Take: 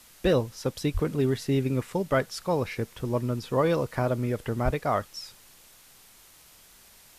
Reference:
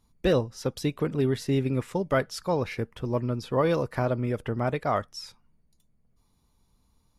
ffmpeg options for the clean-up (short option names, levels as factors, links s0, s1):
-filter_complex "[0:a]asplit=3[s0][s1][s2];[s0]afade=t=out:st=0.93:d=0.02[s3];[s1]highpass=f=140:w=0.5412,highpass=f=140:w=1.3066,afade=t=in:st=0.93:d=0.02,afade=t=out:st=1.05:d=0.02[s4];[s2]afade=t=in:st=1.05:d=0.02[s5];[s3][s4][s5]amix=inputs=3:normalize=0,asplit=3[s6][s7][s8];[s6]afade=t=out:st=4.64:d=0.02[s9];[s7]highpass=f=140:w=0.5412,highpass=f=140:w=1.3066,afade=t=in:st=4.64:d=0.02,afade=t=out:st=4.76:d=0.02[s10];[s8]afade=t=in:st=4.76:d=0.02[s11];[s9][s10][s11]amix=inputs=3:normalize=0,afwtdn=0.0022"